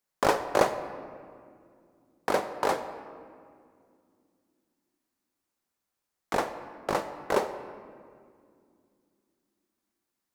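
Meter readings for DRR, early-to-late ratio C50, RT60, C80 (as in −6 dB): 9.0 dB, 10.5 dB, 2.3 s, 11.5 dB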